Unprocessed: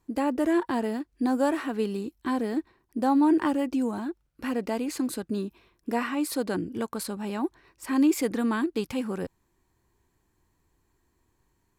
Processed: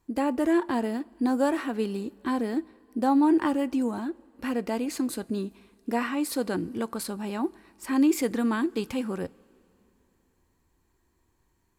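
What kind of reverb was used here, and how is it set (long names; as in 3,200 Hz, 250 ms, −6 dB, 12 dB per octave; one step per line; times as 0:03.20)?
coupled-rooms reverb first 0.22 s, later 3 s, from −20 dB, DRR 16.5 dB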